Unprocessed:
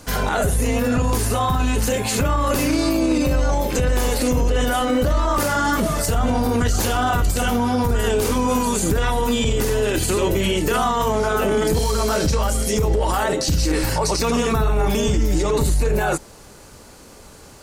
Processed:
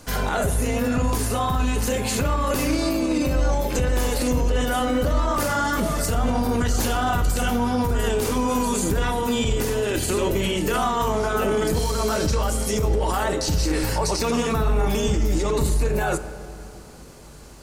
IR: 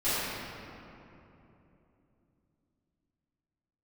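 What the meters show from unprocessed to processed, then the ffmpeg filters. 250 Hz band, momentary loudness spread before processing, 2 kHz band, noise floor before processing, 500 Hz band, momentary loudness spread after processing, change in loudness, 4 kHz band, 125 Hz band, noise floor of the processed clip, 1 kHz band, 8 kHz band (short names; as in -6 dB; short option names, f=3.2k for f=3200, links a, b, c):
-2.5 dB, 1 LU, -3.0 dB, -44 dBFS, -3.0 dB, 1 LU, -3.0 dB, -3.0 dB, -3.0 dB, -41 dBFS, -3.0 dB, -3.0 dB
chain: -filter_complex "[0:a]asplit=2[a][b];[1:a]atrim=start_sample=2205[c];[b][c]afir=irnorm=-1:irlink=0,volume=-23.5dB[d];[a][d]amix=inputs=2:normalize=0,volume=-3.5dB"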